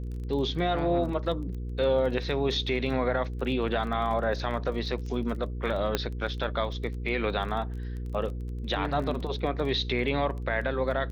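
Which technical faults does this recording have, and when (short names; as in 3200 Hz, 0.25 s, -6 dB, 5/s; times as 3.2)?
crackle 19/s -36 dBFS
hum 60 Hz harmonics 8 -34 dBFS
5.95 pop -10 dBFS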